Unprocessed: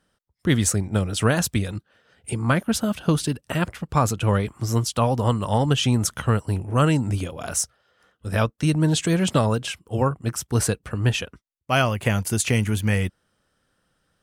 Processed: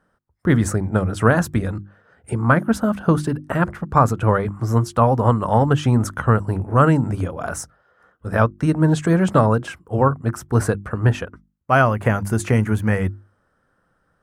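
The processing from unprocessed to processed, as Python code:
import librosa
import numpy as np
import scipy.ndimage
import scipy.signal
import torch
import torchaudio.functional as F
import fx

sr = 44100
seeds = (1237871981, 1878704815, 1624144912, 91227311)

y = fx.high_shelf_res(x, sr, hz=2100.0, db=-11.5, q=1.5)
y = fx.hum_notches(y, sr, base_hz=50, count=7)
y = y * 10.0 ** (4.5 / 20.0)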